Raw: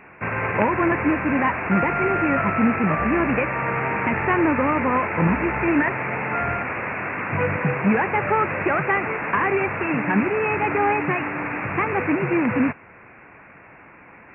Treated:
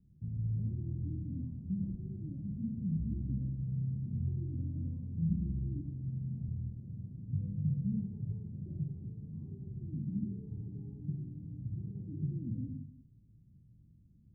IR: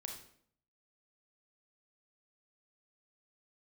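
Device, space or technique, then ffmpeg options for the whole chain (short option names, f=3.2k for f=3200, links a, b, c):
club heard from the street: -filter_complex "[0:a]alimiter=limit=-13dB:level=0:latency=1,lowpass=f=160:w=0.5412,lowpass=f=160:w=1.3066[a];[1:a]atrim=start_sample=2205[b];[a][b]afir=irnorm=-1:irlink=0"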